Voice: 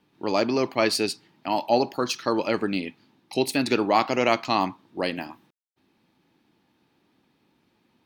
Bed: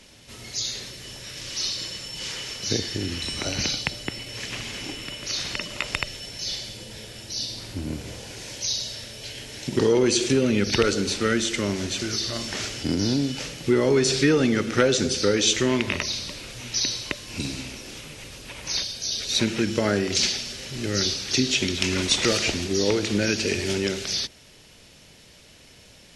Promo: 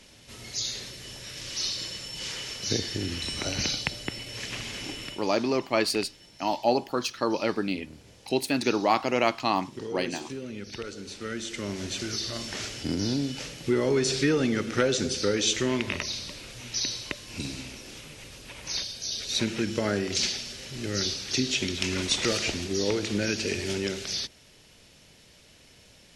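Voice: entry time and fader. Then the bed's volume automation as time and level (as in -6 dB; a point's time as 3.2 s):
4.95 s, -2.5 dB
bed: 5.07 s -2.5 dB
5.33 s -16.5 dB
10.92 s -16.5 dB
11.93 s -4.5 dB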